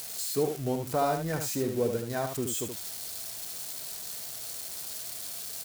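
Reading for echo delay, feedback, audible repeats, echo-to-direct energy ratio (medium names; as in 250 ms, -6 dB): 75 ms, no regular repeats, 1, -6.5 dB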